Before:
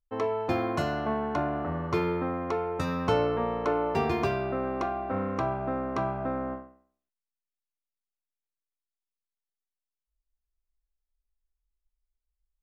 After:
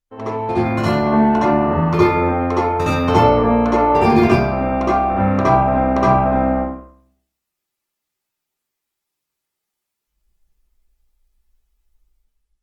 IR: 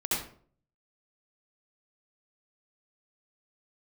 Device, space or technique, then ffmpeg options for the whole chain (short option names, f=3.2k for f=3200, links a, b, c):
speakerphone in a meeting room: -filter_complex "[1:a]atrim=start_sample=2205[a];[0:a][a]afir=irnorm=-1:irlink=0,dynaudnorm=f=320:g=5:m=9dB" -ar 48000 -c:a libopus -b:a 20k